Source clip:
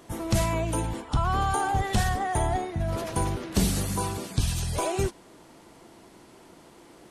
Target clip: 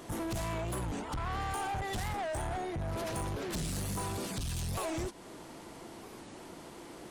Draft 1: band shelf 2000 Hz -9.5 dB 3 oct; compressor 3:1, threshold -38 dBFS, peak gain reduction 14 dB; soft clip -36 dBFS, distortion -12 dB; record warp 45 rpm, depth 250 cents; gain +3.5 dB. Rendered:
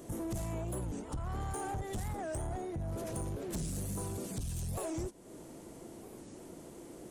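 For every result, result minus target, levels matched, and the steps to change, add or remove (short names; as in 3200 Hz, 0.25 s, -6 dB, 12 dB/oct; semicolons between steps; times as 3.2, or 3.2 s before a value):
2000 Hz band -6.5 dB; compressor: peak gain reduction +4 dB
remove: band shelf 2000 Hz -9.5 dB 3 oct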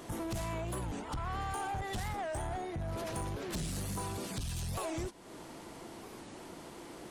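compressor: peak gain reduction +4.5 dB
change: compressor 3:1, threshold -31.5 dBFS, peak gain reduction 10 dB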